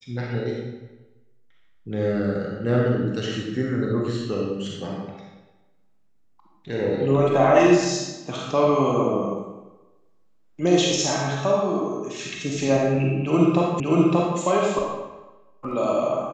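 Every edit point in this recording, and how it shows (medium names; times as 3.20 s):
13.80 s: repeat of the last 0.58 s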